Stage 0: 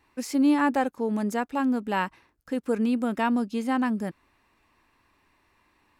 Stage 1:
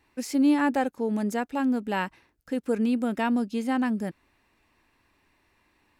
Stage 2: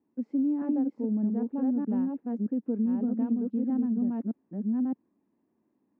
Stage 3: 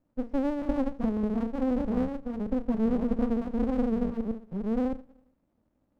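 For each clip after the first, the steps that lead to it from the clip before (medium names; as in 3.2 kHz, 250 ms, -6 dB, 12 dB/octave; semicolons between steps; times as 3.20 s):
peaking EQ 1.1 kHz -5 dB 0.56 oct
chunks repeated in reverse 616 ms, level -1.5 dB; ladder band-pass 260 Hz, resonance 50%; compression, threshold -31 dBFS, peak gain reduction 8.5 dB; trim +7 dB
on a send at -12 dB: reverberation RT60 0.45 s, pre-delay 7 ms; on the sum: sliding maximum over 65 samples; trim +3 dB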